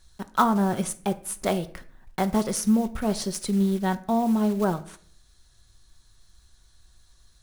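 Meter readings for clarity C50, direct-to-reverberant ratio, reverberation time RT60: 16.5 dB, 9.0 dB, 0.55 s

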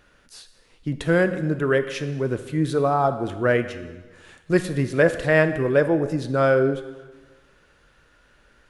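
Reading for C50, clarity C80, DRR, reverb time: 11.5 dB, 13.0 dB, 9.5 dB, 1.3 s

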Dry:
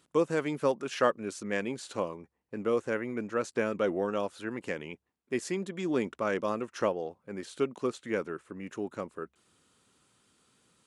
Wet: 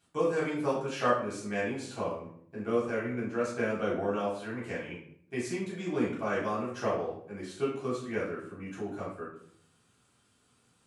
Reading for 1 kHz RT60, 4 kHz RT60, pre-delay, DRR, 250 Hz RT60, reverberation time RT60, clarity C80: 0.55 s, 0.45 s, 3 ms, -8.0 dB, 0.85 s, 0.60 s, 7.5 dB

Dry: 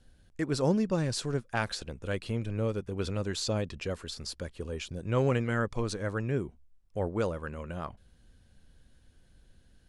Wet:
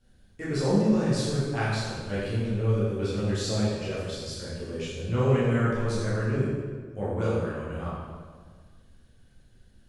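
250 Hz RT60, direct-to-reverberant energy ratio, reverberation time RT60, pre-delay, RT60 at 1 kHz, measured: 2.0 s, -10.0 dB, 1.6 s, 8 ms, 1.6 s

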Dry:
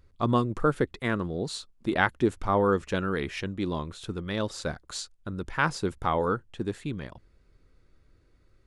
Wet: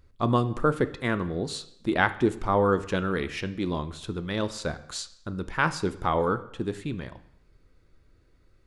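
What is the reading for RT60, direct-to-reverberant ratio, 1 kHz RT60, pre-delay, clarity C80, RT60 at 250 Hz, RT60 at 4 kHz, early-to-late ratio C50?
0.70 s, 11.5 dB, 0.70 s, 6 ms, 18.0 dB, 0.75 s, 0.70 s, 15.0 dB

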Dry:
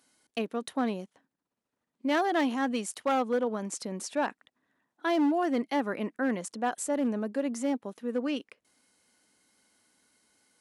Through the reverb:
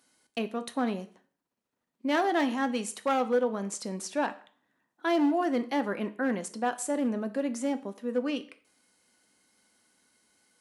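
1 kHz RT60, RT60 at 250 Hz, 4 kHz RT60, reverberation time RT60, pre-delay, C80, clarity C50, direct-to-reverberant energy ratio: 0.50 s, 0.40 s, 0.40 s, 0.50 s, 4 ms, 19.5 dB, 16.5 dB, 9.0 dB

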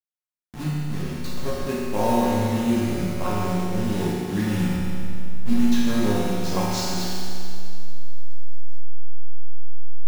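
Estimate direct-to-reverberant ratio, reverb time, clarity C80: -9.5 dB, 2.4 s, -1.5 dB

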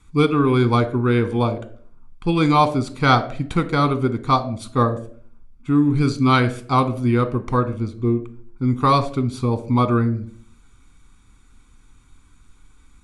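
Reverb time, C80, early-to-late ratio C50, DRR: 0.50 s, 18.0 dB, 14.5 dB, 8.5 dB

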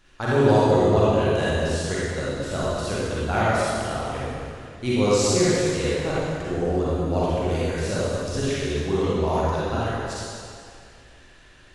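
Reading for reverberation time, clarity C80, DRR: 2.4 s, -3.0 dB, -9.0 dB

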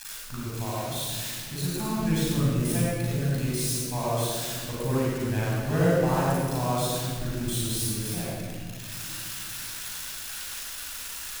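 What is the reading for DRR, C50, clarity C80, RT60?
-7.5 dB, -4.5 dB, -2.5 dB, no single decay rate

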